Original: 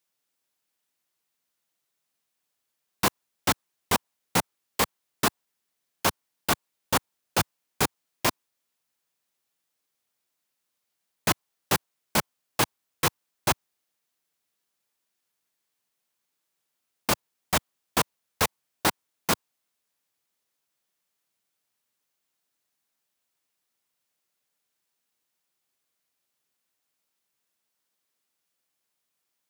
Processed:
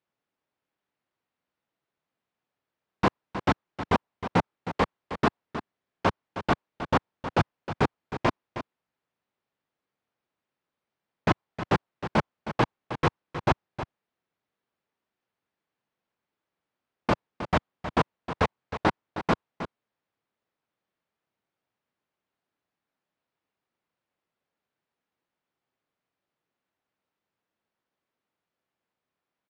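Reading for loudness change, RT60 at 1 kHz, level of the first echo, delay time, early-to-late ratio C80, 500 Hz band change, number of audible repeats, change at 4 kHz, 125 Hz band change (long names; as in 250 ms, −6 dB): −1.0 dB, no reverb audible, −11.0 dB, 314 ms, no reverb audible, +3.5 dB, 1, −8.5 dB, +5.0 dB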